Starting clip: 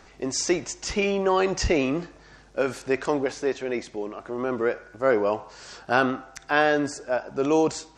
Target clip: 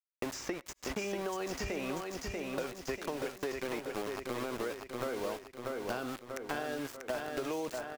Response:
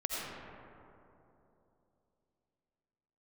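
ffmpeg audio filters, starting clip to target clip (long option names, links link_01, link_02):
-filter_complex "[0:a]aeval=exprs='val(0)*gte(abs(val(0)),0.0335)':channel_layout=same,acompressor=threshold=-27dB:ratio=6,aecho=1:1:639|1278|1917|2556|3195|3834:0.473|0.227|0.109|0.0523|0.0251|0.0121,acrossover=split=580|2600[link_01][link_02][link_03];[link_01]acompressor=threshold=-38dB:ratio=4[link_04];[link_02]acompressor=threshold=-41dB:ratio=4[link_05];[link_03]acompressor=threshold=-47dB:ratio=4[link_06];[link_04][link_05][link_06]amix=inputs=3:normalize=0,asplit=2[link_07][link_08];[1:a]atrim=start_sample=2205,afade=type=out:start_time=0.16:duration=0.01,atrim=end_sample=7497,asetrate=39249,aresample=44100[link_09];[link_08][link_09]afir=irnorm=-1:irlink=0,volume=-25dB[link_10];[link_07][link_10]amix=inputs=2:normalize=0"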